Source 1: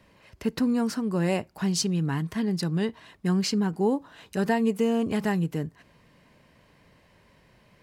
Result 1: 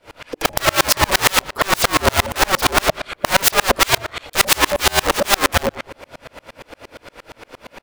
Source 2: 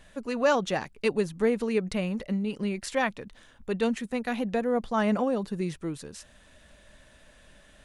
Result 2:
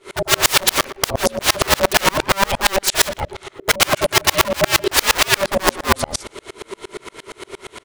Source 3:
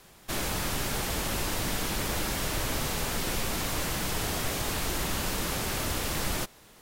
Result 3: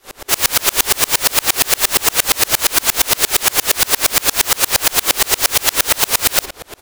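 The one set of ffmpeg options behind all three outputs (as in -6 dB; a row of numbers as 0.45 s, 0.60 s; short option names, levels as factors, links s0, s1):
-filter_complex "[0:a]aeval=exprs='(mod(26.6*val(0)+1,2)-1)/26.6':c=same,aeval=exprs='val(0)*sin(2*PI*390*n/s)':c=same,equalizer=f=190:t=o:w=0.64:g=-12,asplit=2[s0][s1];[s1]adelay=119,lowpass=f=2300:p=1,volume=0.168,asplit=2[s2][s3];[s3]adelay=119,lowpass=f=2300:p=1,volume=0.45,asplit=2[s4][s5];[s5]adelay=119,lowpass=f=2300:p=1,volume=0.45,asplit=2[s6][s7];[s7]adelay=119,lowpass=f=2300:p=1,volume=0.45[s8];[s0][s2][s4][s6][s8]amix=inputs=5:normalize=0,apsyclip=53.1,bandreject=f=50:t=h:w=6,bandreject=f=100:t=h:w=6,bandreject=f=150:t=h:w=6,bandreject=f=200:t=h:w=6,bandreject=f=250:t=h:w=6,bandreject=f=300:t=h:w=6,bandreject=f=350:t=h:w=6,aeval=exprs='val(0)*pow(10,-34*if(lt(mod(-8.6*n/s,1),2*abs(-8.6)/1000),1-mod(-8.6*n/s,1)/(2*abs(-8.6)/1000),(mod(-8.6*n/s,1)-2*abs(-8.6)/1000)/(1-2*abs(-8.6)/1000))/20)':c=same,volume=0.708"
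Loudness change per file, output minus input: +10.5 LU, +12.0 LU, +17.0 LU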